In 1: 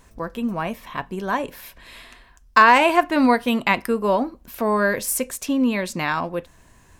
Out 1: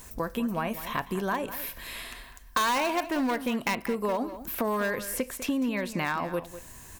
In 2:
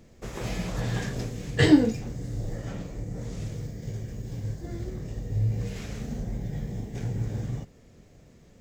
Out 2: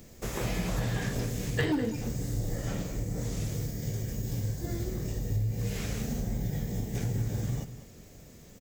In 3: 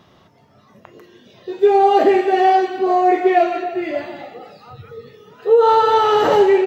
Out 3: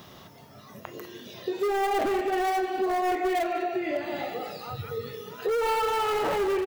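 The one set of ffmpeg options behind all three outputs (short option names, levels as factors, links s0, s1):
-filter_complex "[0:a]acrossover=split=3200[s0][s1];[s1]acompressor=threshold=0.00316:ratio=4:attack=1:release=60[s2];[s0][s2]amix=inputs=2:normalize=0,asoftclip=type=hard:threshold=0.2,acompressor=threshold=0.0355:ratio=5,aemphasis=mode=production:type=50fm,asplit=2[s3][s4];[s4]adelay=198.3,volume=0.224,highshelf=f=4000:g=-4.46[s5];[s3][s5]amix=inputs=2:normalize=0,volume=1.33"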